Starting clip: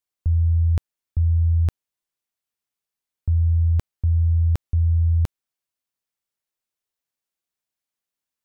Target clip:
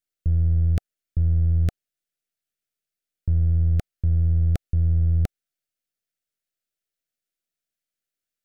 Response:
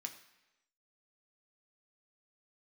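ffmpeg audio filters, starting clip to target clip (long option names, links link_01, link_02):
-af "aeval=exprs='if(lt(val(0),0),0.447*val(0),val(0))':channel_layout=same,asuperstop=centerf=960:order=8:qfactor=1.9,volume=1dB"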